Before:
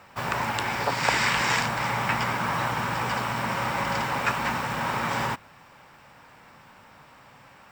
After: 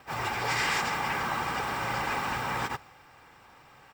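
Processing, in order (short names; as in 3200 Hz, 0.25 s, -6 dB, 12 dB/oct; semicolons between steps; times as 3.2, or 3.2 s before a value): local time reversal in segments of 0.159 s; comb 2.5 ms, depth 40%; transient shaper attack -6 dB, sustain +2 dB; wavefolder -16.5 dBFS; plain phase-vocoder stretch 0.51×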